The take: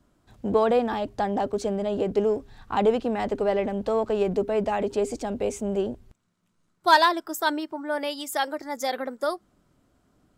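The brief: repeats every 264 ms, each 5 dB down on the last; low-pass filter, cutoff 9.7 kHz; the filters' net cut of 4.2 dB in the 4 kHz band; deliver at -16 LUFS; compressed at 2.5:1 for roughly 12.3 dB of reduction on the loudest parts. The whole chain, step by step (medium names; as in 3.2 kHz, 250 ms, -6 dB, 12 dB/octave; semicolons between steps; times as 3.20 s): low-pass 9.7 kHz; peaking EQ 4 kHz -5 dB; compression 2.5:1, threshold -31 dBFS; feedback delay 264 ms, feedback 56%, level -5 dB; trim +15.5 dB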